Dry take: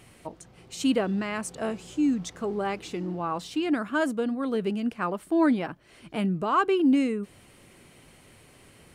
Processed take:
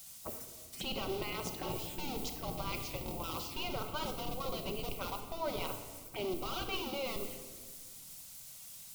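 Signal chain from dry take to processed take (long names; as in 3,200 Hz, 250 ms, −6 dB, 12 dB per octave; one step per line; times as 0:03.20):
in parallel at −5.5 dB: comparator with hysteresis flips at −25 dBFS
on the sum: noise gate −45 dBFS, range −17 dB
phaser swept by the level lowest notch 370 Hz, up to 1,700 Hz, full sweep at −28.5 dBFS
background noise violet −50 dBFS
gate on every frequency bin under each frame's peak −10 dB weak
reversed playback
downward compressor 4 to 1, threshold −43 dBFS, peak gain reduction 13.5 dB
reversed playback
notch filter 1,700 Hz, Q 13
rectangular room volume 1,700 cubic metres, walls mixed, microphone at 1.1 metres
level +5.5 dB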